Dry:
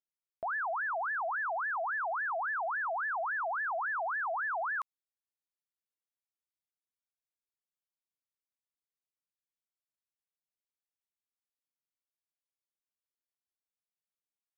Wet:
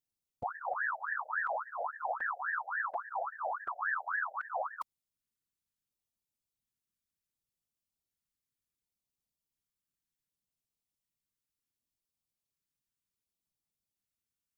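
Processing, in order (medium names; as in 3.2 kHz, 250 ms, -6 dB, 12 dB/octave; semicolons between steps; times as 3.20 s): tone controls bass +14 dB, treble +4 dB; LFO notch square 0.68 Hz 680–1600 Hz; whisper effect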